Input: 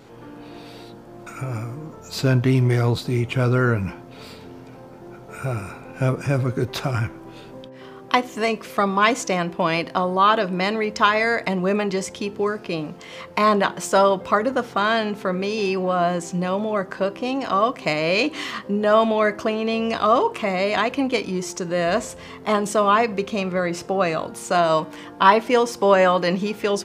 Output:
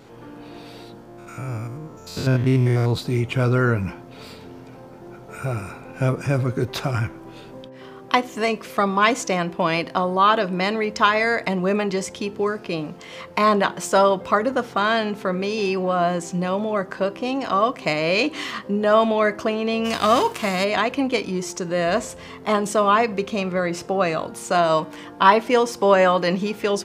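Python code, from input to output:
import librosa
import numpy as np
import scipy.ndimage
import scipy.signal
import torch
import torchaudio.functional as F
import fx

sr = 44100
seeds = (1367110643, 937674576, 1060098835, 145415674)

y = fx.spec_steps(x, sr, hold_ms=100, at=(1.04, 2.9), fade=0.02)
y = fx.envelope_flatten(y, sr, power=0.6, at=(19.84, 20.63), fade=0.02)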